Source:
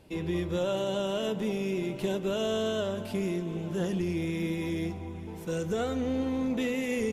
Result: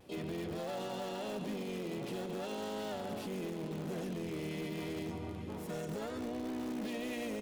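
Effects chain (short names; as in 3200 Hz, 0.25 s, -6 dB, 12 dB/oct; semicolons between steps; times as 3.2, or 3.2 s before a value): HPF 110 Hz 6 dB/oct; echo 0.129 s -13.5 dB; limiter -30.5 dBFS, peak gain reduction 10.5 dB; on a send: feedback echo 0.933 s, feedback 29%, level -21 dB; on the sum: speed mistake 25 fps video run at 24 fps; bell 220 Hz +4 dB 0.21 oct; harmoniser +4 st -4 dB, +7 st -9 dB, +12 st -18 dB; in parallel at -11 dB: wrapped overs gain 29.5 dB; on the sum: vibrato 0.41 Hz 17 cents; gain -5.5 dB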